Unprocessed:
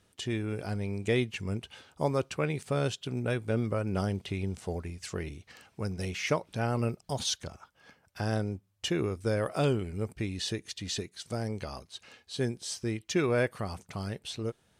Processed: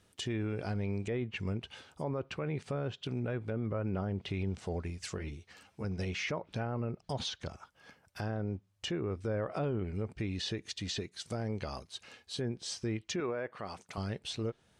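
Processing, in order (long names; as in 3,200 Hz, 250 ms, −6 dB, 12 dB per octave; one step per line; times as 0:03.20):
treble cut that deepens with the level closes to 1,700 Hz, closed at −25.5 dBFS
0:13.20–0:13.98: high-pass filter 410 Hz 6 dB per octave
brickwall limiter −26.5 dBFS, peak gain reduction 10.5 dB
0:05.18–0:05.84: string-ensemble chorus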